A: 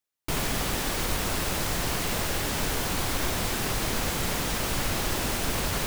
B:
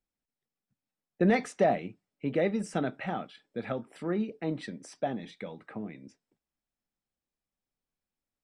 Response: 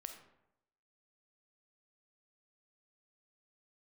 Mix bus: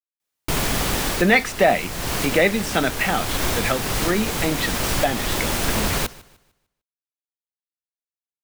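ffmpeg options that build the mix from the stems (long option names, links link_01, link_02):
-filter_complex "[0:a]adelay=200,volume=-1.5dB,asplit=2[link_01][link_02];[link_02]volume=-21dB[link_03];[1:a]equalizer=frequency=2900:width_type=o:width=2.8:gain=14,acrusher=bits=7:dc=4:mix=0:aa=0.000001,volume=-1dB,asplit=2[link_04][link_05];[link_05]apad=whole_len=267461[link_06];[link_01][link_06]sidechaincompress=threshold=-30dB:ratio=8:attack=35:release=546[link_07];[link_03]aecho=0:1:150|300|450|600|750:1|0.33|0.109|0.0359|0.0119[link_08];[link_07][link_04][link_08]amix=inputs=3:normalize=0,dynaudnorm=framelen=150:gausssize=3:maxgain=7.5dB"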